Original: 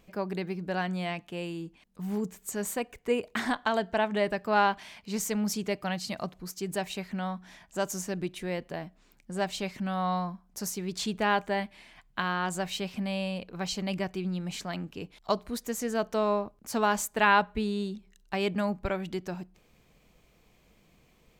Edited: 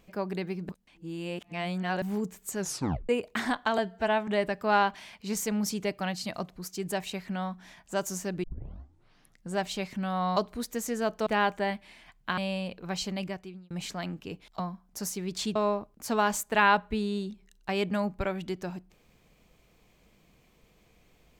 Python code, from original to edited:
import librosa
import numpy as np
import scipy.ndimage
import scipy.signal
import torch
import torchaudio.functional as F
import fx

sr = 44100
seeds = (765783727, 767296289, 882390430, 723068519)

y = fx.edit(x, sr, fx.reverse_span(start_s=0.69, length_s=1.33),
    fx.tape_stop(start_s=2.59, length_s=0.5),
    fx.stretch_span(start_s=3.78, length_s=0.33, factor=1.5),
    fx.tape_start(start_s=8.27, length_s=1.08),
    fx.swap(start_s=10.2, length_s=0.96, other_s=15.3, other_length_s=0.9),
    fx.cut(start_s=12.27, length_s=0.81),
    fx.fade_out_span(start_s=13.76, length_s=0.65), tone=tone)